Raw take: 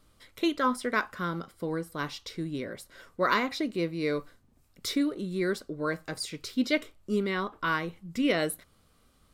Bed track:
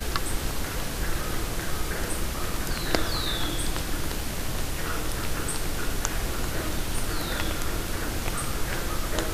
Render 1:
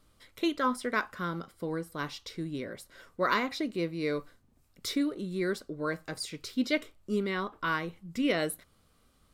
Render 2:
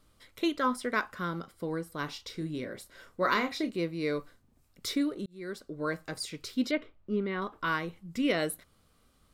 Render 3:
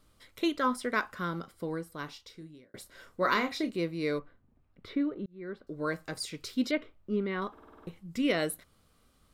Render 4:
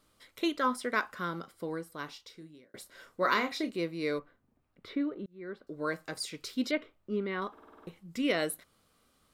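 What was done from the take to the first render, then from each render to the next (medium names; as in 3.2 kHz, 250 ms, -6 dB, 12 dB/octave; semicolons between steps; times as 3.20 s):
trim -2 dB
2.05–3.70 s: doubling 32 ms -9 dB; 5.26–5.82 s: fade in; 6.71–7.42 s: distance through air 330 m
1.57–2.74 s: fade out; 4.19–5.67 s: distance through air 480 m; 7.52 s: stutter in place 0.05 s, 7 plays
bass shelf 130 Hz -11.5 dB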